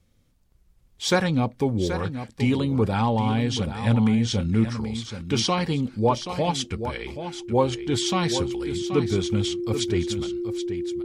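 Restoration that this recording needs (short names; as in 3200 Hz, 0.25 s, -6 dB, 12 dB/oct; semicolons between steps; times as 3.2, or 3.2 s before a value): notch 350 Hz, Q 30; inverse comb 0.779 s -10 dB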